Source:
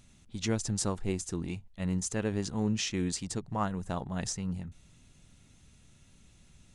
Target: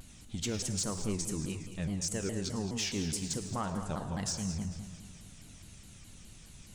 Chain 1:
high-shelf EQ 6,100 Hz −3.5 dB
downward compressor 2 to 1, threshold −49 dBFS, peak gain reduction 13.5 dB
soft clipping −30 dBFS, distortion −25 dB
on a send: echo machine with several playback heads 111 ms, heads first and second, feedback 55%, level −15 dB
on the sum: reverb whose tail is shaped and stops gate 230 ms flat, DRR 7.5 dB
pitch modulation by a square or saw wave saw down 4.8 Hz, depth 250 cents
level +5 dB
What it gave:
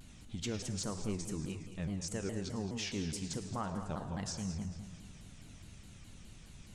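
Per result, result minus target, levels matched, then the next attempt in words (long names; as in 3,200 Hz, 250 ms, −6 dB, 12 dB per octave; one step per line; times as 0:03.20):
downward compressor: peak gain reduction +3.5 dB; 8,000 Hz band −3.0 dB
high-shelf EQ 6,100 Hz −3.5 dB
downward compressor 2 to 1, threshold −41.5 dBFS, peak gain reduction 10 dB
soft clipping −30 dBFS, distortion −19 dB
on a send: echo machine with several playback heads 111 ms, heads first and second, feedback 55%, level −15 dB
on the sum: reverb whose tail is shaped and stops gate 230 ms flat, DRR 7.5 dB
pitch modulation by a square or saw wave saw down 4.8 Hz, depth 250 cents
level +5 dB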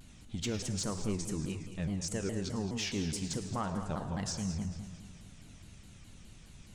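8,000 Hz band −3.0 dB
high-shelf EQ 6,100 Hz +7 dB
downward compressor 2 to 1, threshold −41.5 dBFS, peak gain reduction 10 dB
soft clipping −30 dBFS, distortion −19 dB
on a send: echo machine with several playback heads 111 ms, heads first and second, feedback 55%, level −15 dB
on the sum: reverb whose tail is shaped and stops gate 230 ms flat, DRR 7.5 dB
pitch modulation by a square or saw wave saw down 4.8 Hz, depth 250 cents
level +5 dB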